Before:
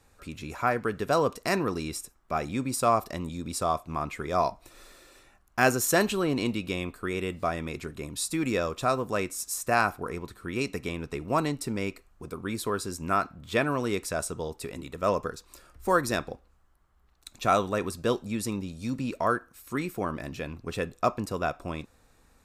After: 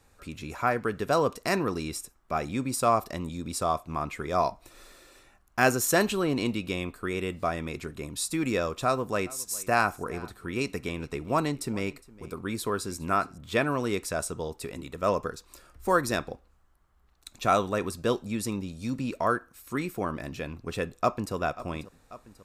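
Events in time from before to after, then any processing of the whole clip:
8.85–13.38 s: delay 411 ms -21.5 dB
20.84–21.34 s: echo throw 540 ms, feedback 65%, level -16.5 dB

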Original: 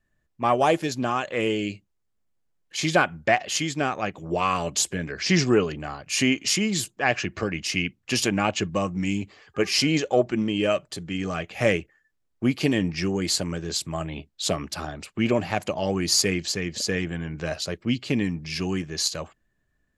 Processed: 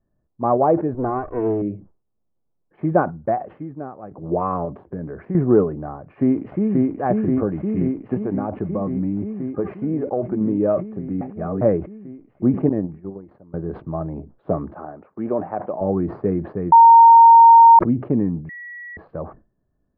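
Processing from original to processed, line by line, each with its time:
0.94–1.62 s: comb filter that takes the minimum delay 2.7 ms
3.09–4.11 s: fade out quadratic, to -12 dB
4.65–5.35 s: compression 2.5:1, threshold -30 dBFS
5.98–6.96 s: echo throw 530 ms, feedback 80%, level -1.5 dB
8.14–10.41 s: compression, threshold -22 dBFS
11.21–11.61 s: reverse
12.69–13.54 s: gate -23 dBFS, range -23 dB
14.74–15.81 s: high-pass 580 Hz 6 dB/octave
16.72–17.79 s: bleep 922 Hz -6 dBFS
18.49–18.97 s: bleep 1.93 kHz -13.5 dBFS
whole clip: Bessel low-pass 720 Hz, order 6; bass shelf 110 Hz -6 dB; decay stretcher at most 150 dB/s; trim +6.5 dB

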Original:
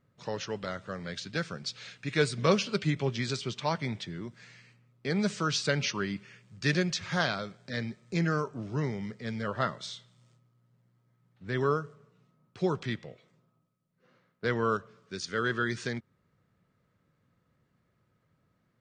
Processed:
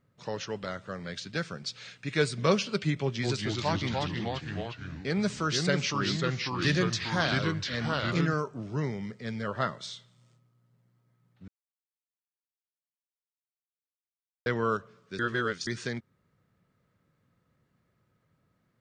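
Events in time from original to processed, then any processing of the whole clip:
3.01–8.34 s: ever faster or slower copies 218 ms, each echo -2 st, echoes 3
11.48–14.46 s: mute
15.19–15.67 s: reverse

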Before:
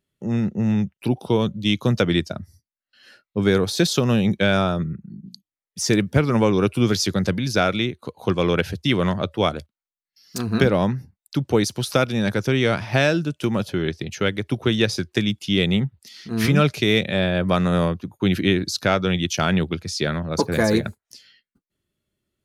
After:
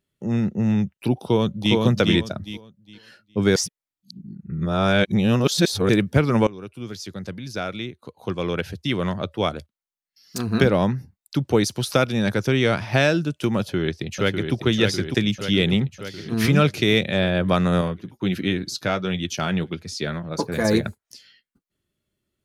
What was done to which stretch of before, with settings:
1.20–1.75 s: echo throw 410 ms, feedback 25%, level -2 dB
3.56–5.89 s: reverse
6.47–10.63 s: fade in, from -20 dB
13.58–14.54 s: echo throw 600 ms, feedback 65%, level -5.5 dB
17.81–20.65 s: flange 1.4 Hz, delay 3.7 ms, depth 3 ms, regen -57%

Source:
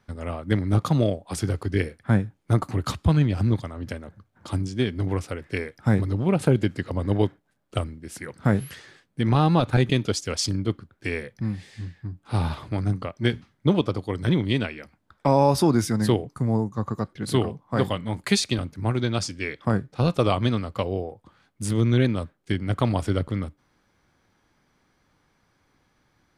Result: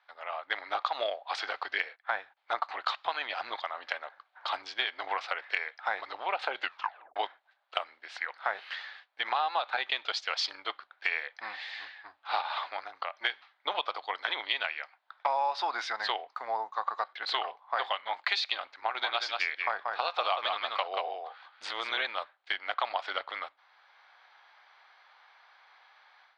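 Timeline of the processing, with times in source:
1.47–2.37 s: gate -49 dBFS, range -15 dB
6.60 s: tape stop 0.56 s
12.41–13.17 s: compression 3:1, threshold -31 dBFS
18.78–22.07 s: delay 183 ms -6.5 dB
whole clip: level rider; elliptic band-pass 740–4100 Hz, stop band 60 dB; compression 4:1, threshold -27 dBFS

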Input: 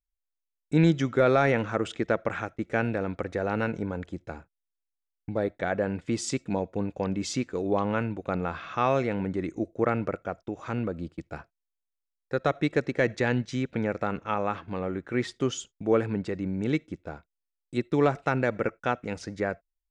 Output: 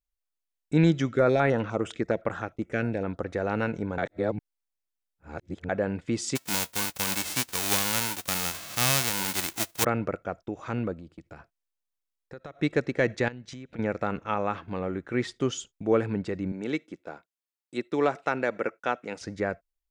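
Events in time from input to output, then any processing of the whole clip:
1.09–3.28 s: step-sequenced notch 9.8 Hz 910–7800 Hz
3.98–5.69 s: reverse
6.35–9.83 s: formants flattened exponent 0.1
10.93–12.59 s: compression 4:1, threshold -41 dBFS
13.28–13.79 s: compression 8:1, threshold -38 dBFS
16.52–19.21 s: Bessel high-pass 310 Hz

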